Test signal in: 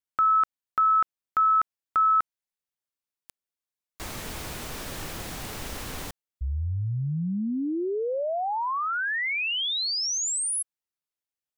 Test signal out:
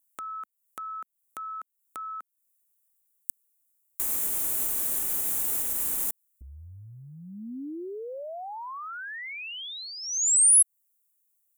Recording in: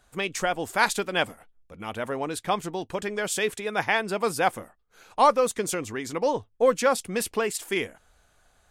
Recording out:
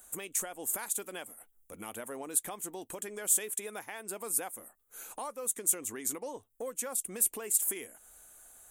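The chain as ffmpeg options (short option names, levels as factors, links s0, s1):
-af "acompressor=threshold=0.0178:ratio=6:attack=1.4:release=438:knee=6:detection=peak,aexciter=amount=12:drive=4.3:freq=7100,lowshelf=f=200:t=q:w=1.5:g=-6,volume=0.841"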